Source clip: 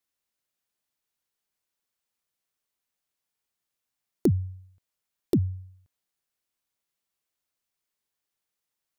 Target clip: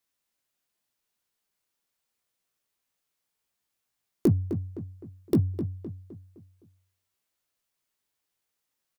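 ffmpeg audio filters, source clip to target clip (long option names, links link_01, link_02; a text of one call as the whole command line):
ffmpeg -i in.wav -filter_complex "[0:a]asplit=2[link_01][link_02];[link_02]asoftclip=type=tanh:threshold=-27.5dB,volume=-6dB[link_03];[link_01][link_03]amix=inputs=2:normalize=0,asplit=2[link_04][link_05];[link_05]adelay=18,volume=-7.5dB[link_06];[link_04][link_06]amix=inputs=2:normalize=0,asplit=2[link_07][link_08];[link_08]adelay=257,lowpass=frequency=2700:poles=1,volume=-9.5dB,asplit=2[link_09][link_10];[link_10]adelay=257,lowpass=frequency=2700:poles=1,volume=0.44,asplit=2[link_11][link_12];[link_12]adelay=257,lowpass=frequency=2700:poles=1,volume=0.44,asplit=2[link_13][link_14];[link_14]adelay=257,lowpass=frequency=2700:poles=1,volume=0.44,asplit=2[link_15][link_16];[link_16]adelay=257,lowpass=frequency=2700:poles=1,volume=0.44[link_17];[link_07][link_09][link_11][link_13][link_15][link_17]amix=inputs=6:normalize=0,volume=-1.5dB" out.wav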